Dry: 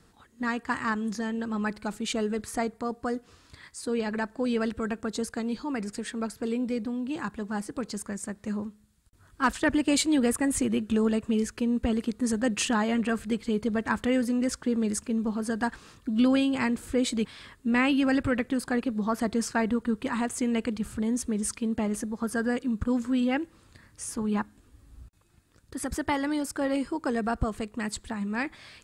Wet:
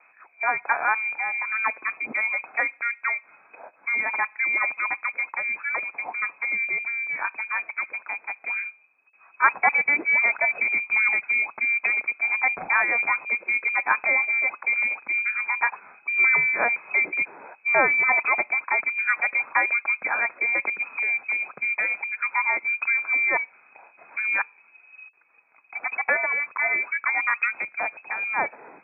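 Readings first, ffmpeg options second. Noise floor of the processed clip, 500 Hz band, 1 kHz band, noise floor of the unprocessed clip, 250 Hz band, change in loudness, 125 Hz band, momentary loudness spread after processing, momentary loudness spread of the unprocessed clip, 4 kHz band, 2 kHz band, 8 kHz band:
-58 dBFS, -5.5 dB, +6.5 dB, -60 dBFS, -23.0 dB, +6.0 dB, under -15 dB, 9 LU, 9 LU, under -40 dB, +15.0 dB, under -40 dB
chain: -filter_complex "[0:a]lowpass=f=2200:t=q:w=0.5098,lowpass=f=2200:t=q:w=0.6013,lowpass=f=2200:t=q:w=0.9,lowpass=f=2200:t=q:w=2.563,afreqshift=-2600,acrossover=split=160 2000:gain=0.0794 1 0.224[s0][s1][s2];[s0][s1][s2]amix=inputs=3:normalize=0,volume=2.66"

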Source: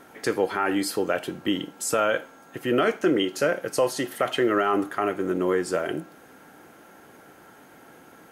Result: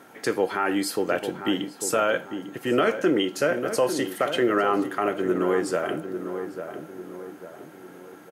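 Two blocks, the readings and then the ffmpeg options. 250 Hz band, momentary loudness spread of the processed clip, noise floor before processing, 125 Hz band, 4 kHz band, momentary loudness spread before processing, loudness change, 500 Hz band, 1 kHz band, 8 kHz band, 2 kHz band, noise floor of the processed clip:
+0.5 dB, 17 LU, -51 dBFS, 0.0 dB, 0.0 dB, 6 LU, 0.0 dB, +0.5 dB, +0.5 dB, 0.0 dB, +0.5 dB, -46 dBFS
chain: -filter_complex "[0:a]highpass=100,asplit=2[s0][s1];[s1]adelay=848,lowpass=f=1300:p=1,volume=0.398,asplit=2[s2][s3];[s3]adelay=848,lowpass=f=1300:p=1,volume=0.46,asplit=2[s4][s5];[s5]adelay=848,lowpass=f=1300:p=1,volume=0.46,asplit=2[s6][s7];[s7]adelay=848,lowpass=f=1300:p=1,volume=0.46,asplit=2[s8][s9];[s9]adelay=848,lowpass=f=1300:p=1,volume=0.46[s10];[s2][s4][s6][s8][s10]amix=inputs=5:normalize=0[s11];[s0][s11]amix=inputs=2:normalize=0"

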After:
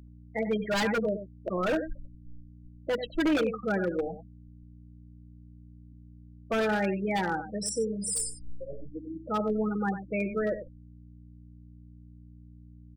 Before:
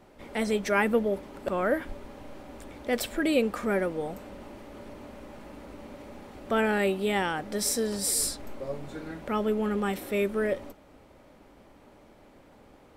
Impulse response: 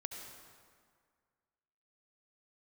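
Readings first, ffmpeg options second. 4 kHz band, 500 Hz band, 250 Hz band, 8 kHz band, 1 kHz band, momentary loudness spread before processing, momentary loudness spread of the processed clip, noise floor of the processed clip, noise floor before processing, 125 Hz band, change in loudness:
-3.5 dB, -2.0 dB, -0.5 dB, -4.0 dB, -1.5 dB, 20 LU, 14 LU, -51 dBFS, -56 dBFS, +1.0 dB, -2.0 dB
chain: -filter_complex "[0:a]afftfilt=real='re*gte(hypot(re,im),0.0794)':imag='im*gte(hypot(re,im),0.0794)':win_size=1024:overlap=0.75,aecho=1:1:6.2:0.66,adynamicequalizer=threshold=0.00158:dfrequency=5200:dqfactor=7.6:tfrequency=5200:tqfactor=7.6:attack=5:release=100:ratio=0.375:range=2:mode=cutabove:tftype=bell,aeval=exprs='val(0)+0.00447*(sin(2*PI*60*n/s)+sin(2*PI*2*60*n/s)/2+sin(2*PI*3*60*n/s)/3+sin(2*PI*4*60*n/s)/4+sin(2*PI*5*60*n/s)/5)':c=same,asplit=2[s0][s1];[s1]adelay=93.29,volume=0.282,highshelf=f=4000:g=-2.1[s2];[s0][s2]amix=inputs=2:normalize=0,acrossover=split=260[s3][s4];[s4]aeval=exprs='0.0841*(abs(mod(val(0)/0.0841+3,4)-2)-1)':c=same[s5];[s3][s5]amix=inputs=2:normalize=0,volume=0.891"

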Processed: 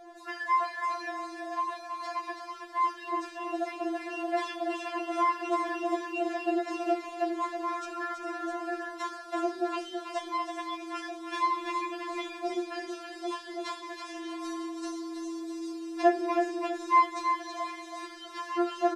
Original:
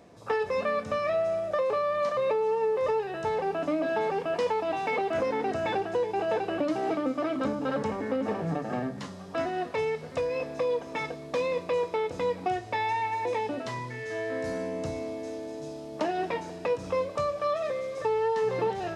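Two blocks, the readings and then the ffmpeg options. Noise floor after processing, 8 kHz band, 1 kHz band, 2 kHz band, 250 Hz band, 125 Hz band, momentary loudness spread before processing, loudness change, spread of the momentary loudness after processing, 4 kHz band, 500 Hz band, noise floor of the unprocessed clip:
-45 dBFS, no reading, +1.5 dB, -1.0 dB, 0.0 dB, under -35 dB, 7 LU, -2.5 dB, 10 LU, +0.5 dB, -7.5 dB, -42 dBFS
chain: -af "equalizer=f=1200:w=0.6:g=4.5,aecho=1:1:326|652|978|1304:0.473|0.18|0.0683|0.026,afftfilt=real='re*4*eq(mod(b,16),0)':imag='im*4*eq(mod(b,16),0)':win_size=2048:overlap=0.75,volume=1.41"

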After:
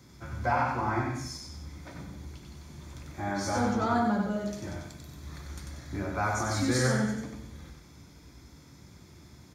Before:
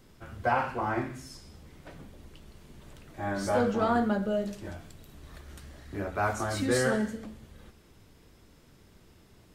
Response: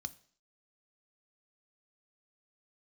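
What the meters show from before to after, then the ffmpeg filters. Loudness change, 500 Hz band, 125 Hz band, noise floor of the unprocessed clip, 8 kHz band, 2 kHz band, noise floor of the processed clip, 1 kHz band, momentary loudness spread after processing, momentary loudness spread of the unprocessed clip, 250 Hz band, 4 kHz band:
-0.5 dB, -3.5 dB, +4.5 dB, -58 dBFS, +3.5 dB, 0.0 dB, -54 dBFS, +0.5 dB, 19 LU, 22 LU, +1.0 dB, +2.5 dB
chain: -filter_complex "[0:a]asplit=2[s0][s1];[s1]acompressor=threshold=0.0141:ratio=6,volume=0.794[s2];[s0][s2]amix=inputs=2:normalize=0,aecho=1:1:94|188|282|376:0.631|0.221|0.0773|0.0271[s3];[1:a]atrim=start_sample=2205[s4];[s3][s4]afir=irnorm=-1:irlink=0"

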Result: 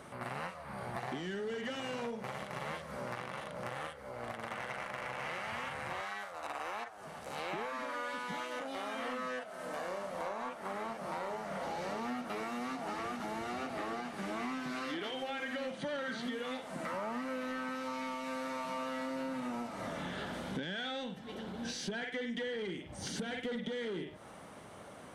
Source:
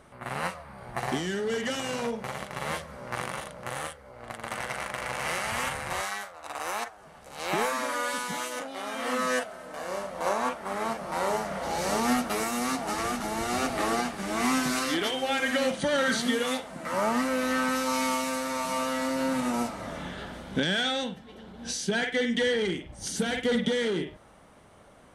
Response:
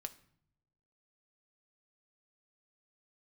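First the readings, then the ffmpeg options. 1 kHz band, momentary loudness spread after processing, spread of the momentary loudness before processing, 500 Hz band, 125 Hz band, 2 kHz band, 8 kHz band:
-9.0 dB, 4 LU, 11 LU, -9.5 dB, -8.0 dB, -10.0 dB, -16.5 dB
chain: -filter_complex "[0:a]acrossover=split=4100[s0][s1];[s1]acompressor=threshold=0.00251:ratio=4:attack=1:release=60[s2];[s0][s2]amix=inputs=2:normalize=0,highpass=100,acompressor=threshold=0.01:ratio=6,asoftclip=type=tanh:threshold=0.0237,volume=1.58"

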